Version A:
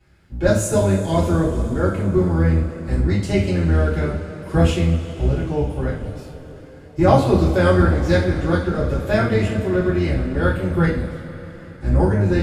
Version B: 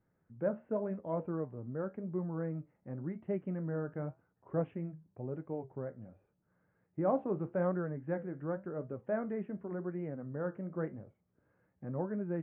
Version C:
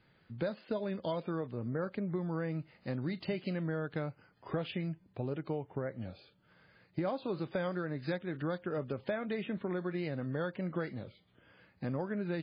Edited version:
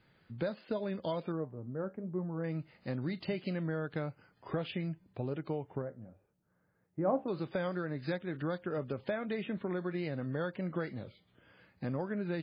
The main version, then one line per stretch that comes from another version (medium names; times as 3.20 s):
C
1.32–2.44 s: from B
5.82–7.28 s: from B
not used: A